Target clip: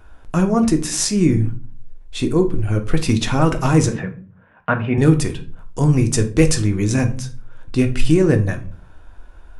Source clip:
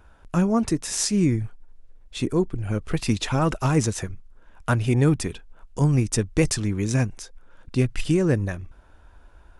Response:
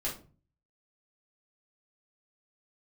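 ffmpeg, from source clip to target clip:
-filter_complex "[0:a]asoftclip=type=hard:threshold=-10dB,asettb=1/sr,asplit=3[link_01][link_02][link_03];[link_01]atrim=end=3.884[link_04];[link_02]atrim=start=3.88:end=4.98,asetpts=PTS-STARTPTS,afade=type=in:duration=0.004:curve=qsin,afade=type=out:start_time=1.096:duration=0.004:curve=qsin,highpass=170,equalizer=frequency=180:width_type=q:width=4:gain=10,equalizer=frequency=340:width_type=q:width=4:gain=-9,equalizer=frequency=570:width_type=q:width=4:gain=3,equalizer=frequency=1700:width_type=q:width=4:gain=4,lowpass=frequency=2600:width=0.5412,lowpass=frequency=2600:width=1.3066[link_05];[link_03]atrim=start=4.976[link_06];[link_04][link_05]acrossfade=duration=0.004:curve1=hsin:curve2=qsin[link_07];[link_07][link_06]acrossfade=duration=0.004:curve1=qsin:curve2=hsin,asplit=2[link_08][link_09];[1:a]atrim=start_sample=2205,asetrate=38367,aresample=44100[link_10];[link_09][link_10]afir=irnorm=-1:irlink=0,volume=-7.5dB[link_11];[link_08][link_11]amix=inputs=2:normalize=0,volume=2dB"

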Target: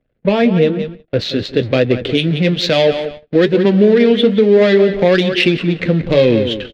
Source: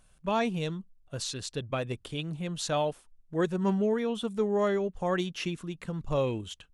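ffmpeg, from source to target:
ffmpeg -i in.wav -filter_complex "[0:a]aeval=exprs='val(0)+0.5*0.00794*sgn(val(0))':channel_layout=same,adynamicsmooth=sensitivity=2:basefreq=1200,highpass=frequency=50:poles=1,asplit=2[link_01][link_02];[link_02]adelay=178,lowpass=frequency=4200:poles=1,volume=-13dB,asplit=2[link_03][link_04];[link_04]adelay=178,lowpass=frequency=4200:poles=1,volume=0.25,asplit=2[link_05][link_06];[link_06]adelay=178,lowpass=frequency=4200:poles=1,volume=0.25[link_07];[link_01][link_03][link_05][link_07]amix=inputs=4:normalize=0,acrossover=split=130[link_08][link_09];[link_09]acompressor=threshold=-28dB:ratio=6[link_10];[link_08][link_10]amix=inputs=2:normalize=0,equalizer=frequency=250:width_type=o:width=1:gain=7,equalizer=frequency=500:width_type=o:width=1:gain=10,equalizer=frequency=1000:width_type=o:width=1:gain=-10,equalizer=frequency=2000:width_type=o:width=1:gain=10,equalizer=frequency=4000:width_type=o:width=1:gain=12,equalizer=frequency=8000:width_type=o:width=1:gain=-6,flanger=delay=7.9:depth=3.7:regen=-53:speed=1.1:shape=sinusoidal,asetnsamples=nb_out_samples=441:pad=0,asendcmd='0.79 highshelf g 3.5;2.05 highshelf g 11',highshelf=frequency=2600:gain=-6.5,agate=range=-32dB:threshold=-45dB:ratio=16:detection=peak,alimiter=level_in=19dB:limit=-1dB:release=50:level=0:latency=1,volume=-1dB" out.wav

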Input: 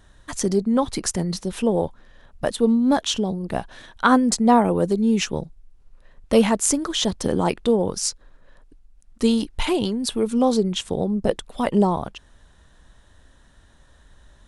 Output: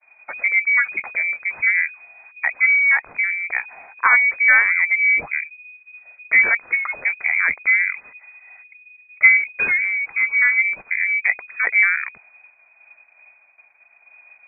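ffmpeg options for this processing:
ffmpeg -i in.wav -filter_complex "[0:a]agate=range=-33dB:threshold=-47dB:ratio=3:detection=peak,asettb=1/sr,asplit=3[link_01][link_02][link_03];[link_01]atrim=end=7.944[link_04];[link_02]atrim=start=7.94:end=9.37,asetpts=PTS-STARTPTS,afade=type=in:duration=0.004:curve=qsin,afade=type=out:start_time=1.426:duration=0.004:curve=qsin,equalizer=frequency=490:width=1.6:gain=11.5[link_05];[link_03]atrim=start=9.366[link_06];[link_04][link_05]acrossfade=duration=0.004:curve1=hsin:curve2=qsin[link_07];[link_07][link_06]acrossfade=duration=0.004:curve1=qsin:curve2=hsin,asplit=2[link_08][link_09];[link_09]acontrast=46,volume=0dB[link_10];[link_08][link_10]amix=inputs=2:normalize=0,lowpass=frequency=2100:width_type=q:width=0.5098,lowpass=frequency=2100:width_type=q:width=0.6013,lowpass=frequency=2100:width_type=q:width=0.9,lowpass=frequency=2100:width_type=q:width=2.563,afreqshift=-2500,volume=-7dB" out.wav

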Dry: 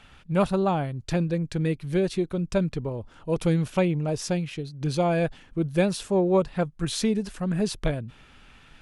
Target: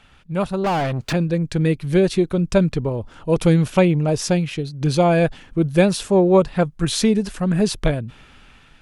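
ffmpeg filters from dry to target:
ffmpeg -i in.wav -filter_complex "[0:a]dynaudnorm=framelen=480:gausssize=5:maxgain=8.5dB,asettb=1/sr,asplit=3[link_01][link_02][link_03];[link_01]atrim=end=0.644[link_04];[link_02]atrim=start=0.64:end=1.13,asetpts=PTS-STARTPTS,afade=type=in:duration=0.004:curve=qsin,afade=type=out:start_time=0.486:duration=0.004:curve=qsin,asplit=2[link_05][link_06];[link_06]highpass=frequency=720:poles=1,volume=30dB,asoftclip=type=tanh:threshold=-14.5dB[link_07];[link_05][link_07]amix=inputs=2:normalize=0,lowpass=frequency=2500:poles=1,volume=-6dB[link_08];[link_03]atrim=start=1.126[link_09];[link_04][link_08]acrossfade=duration=0.004:curve1=hsin:curve2=qsin[link_10];[link_10][link_09]acrossfade=duration=0.004:curve1=qsin:curve2=hsin" out.wav

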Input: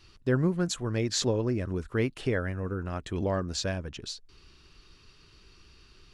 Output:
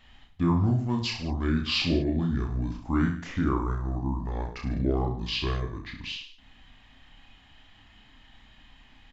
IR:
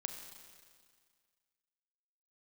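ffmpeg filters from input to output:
-af "asetrate=29635,aresample=44100,aecho=1:1:30|64.5|104.2|149.8|202.3:0.631|0.398|0.251|0.158|0.1"

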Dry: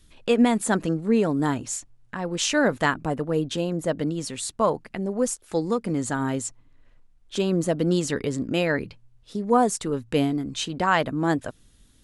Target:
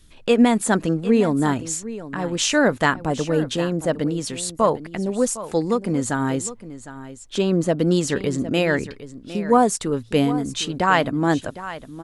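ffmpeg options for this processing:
ffmpeg -i in.wav -filter_complex "[0:a]asettb=1/sr,asplit=3[link_01][link_02][link_03];[link_01]atrim=end=7.364[link_04];[link_02]atrim=start=7.36:end=7.77,asetpts=PTS-STARTPTS,afade=type=in:duration=0.004:curve=qsin,afade=type=out:start_time=0.406:duration=0.004:curve=qsin,highshelf=frequency=9200:gain=-10.5[link_05];[link_03]atrim=start=7.766[link_06];[link_04][link_05]acrossfade=duration=0.004:curve1=hsin:curve2=qsin[link_07];[link_07][link_06]acrossfade=duration=0.004:curve1=qsin:curve2=hsin,aecho=1:1:758:0.188,volume=3.5dB" out.wav

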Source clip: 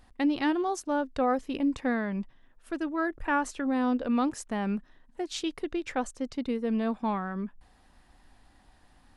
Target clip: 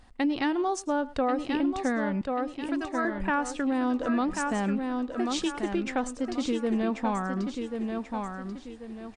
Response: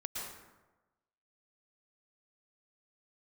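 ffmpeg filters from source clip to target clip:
-filter_complex "[0:a]asettb=1/sr,asplit=3[link_01][link_02][link_03];[link_01]atrim=end=2.214[link_04];[link_02]atrim=start=2.21:end=3.05,asetpts=PTS-STARTPTS,afade=type=in:duration=0.004:curve=qsin,afade=type=out:start_time=0.836:duration=0.004:curve=qsin,highpass=530[link_05];[link_03]atrim=start=3.046[link_06];[link_04][link_05]acrossfade=duration=0.004:curve1=hsin:curve2=qsin[link_07];[link_07][link_06]acrossfade=duration=0.004:curve1=qsin:curve2=hsin,aecho=1:1:1087|2174|3261|4348:0.473|0.17|0.0613|0.0221[link_08];[1:a]atrim=start_sample=2205,afade=type=out:start_time=0.15:duration=0.01,atrim=end_sample=7056[link_09];[link_08][link_09]afir=irnorm=-1:irlink=0,acompressor=threshold=-29dB:ratio=6,volume=7dB" -ar 22050 -c:a libmp3lame -b:a 64k

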